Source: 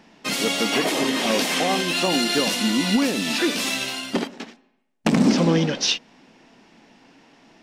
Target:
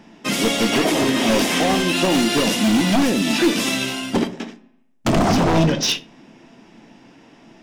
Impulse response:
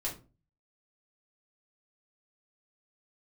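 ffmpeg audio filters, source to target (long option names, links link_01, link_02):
-filter_complex "[0:a]equalizer=frequency=140:width=0.43:gain=6.5,bandreject=frequency=4300:width=10,aeval=exprs='0.211*(abs(mod(val(0)/0.211+3,4)-2)-1)':channel_layout=same,asplit=2[link_01][link_02];[1:a]atrim=start_sample=2205[link_03];[link_02][link_03]afir=irnorm=-1:irlink=0,volume=-8.5dB[link_04];[link_01][link_04]amix=inputs=2:normalize=0"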